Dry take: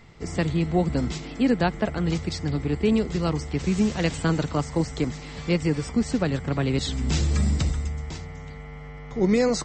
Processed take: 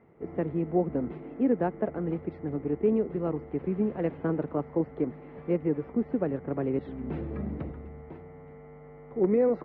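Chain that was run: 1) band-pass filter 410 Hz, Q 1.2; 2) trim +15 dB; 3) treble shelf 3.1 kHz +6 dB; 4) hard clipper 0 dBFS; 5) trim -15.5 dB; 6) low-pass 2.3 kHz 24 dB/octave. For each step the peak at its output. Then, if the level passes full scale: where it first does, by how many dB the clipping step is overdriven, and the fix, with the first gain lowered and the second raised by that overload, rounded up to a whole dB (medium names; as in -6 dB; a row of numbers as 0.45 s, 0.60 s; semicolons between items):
-12.0 dBFS, +3.0 dBFS, +3.0 dBFS, 0.0 dBFS, -15.5 dBFS, -15.5 dBFS; step 2, 3.0 dB; step 2 +12 dB, step 5 -12.5 dB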